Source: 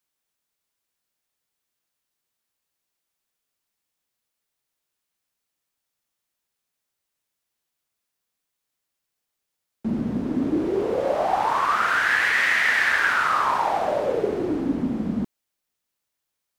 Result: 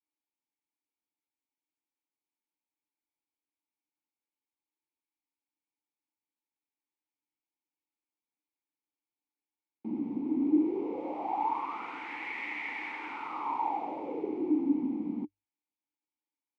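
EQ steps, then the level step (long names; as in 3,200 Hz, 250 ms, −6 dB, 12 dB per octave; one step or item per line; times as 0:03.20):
formant filter u
parametric band 540 Hz +12.5 dB 0.49 octaves
mains-hum notches 50/100 Hz
0.0 dB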